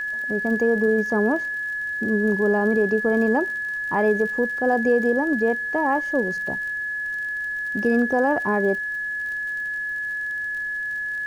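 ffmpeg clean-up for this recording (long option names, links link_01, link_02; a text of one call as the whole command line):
ffmpeg -i in.wav -af "adeclick=threshold=4,bandreject=frequency=1700:width=30,agate=range=-21dB:threshold=-20dB" out.wav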